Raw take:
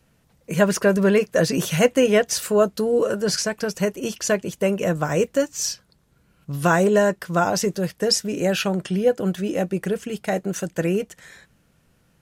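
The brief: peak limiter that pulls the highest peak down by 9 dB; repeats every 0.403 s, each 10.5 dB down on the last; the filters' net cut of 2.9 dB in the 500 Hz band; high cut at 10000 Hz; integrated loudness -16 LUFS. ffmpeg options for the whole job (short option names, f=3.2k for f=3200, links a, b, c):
-af "lowpass=10k,equalizer=f=500:t=o:g=-3.5,alimiter=limit=-14.5dB:level=0:latency=1,aecho=1:1:403|806|1209:0.299|0.0896|0.0269,volume=9dB"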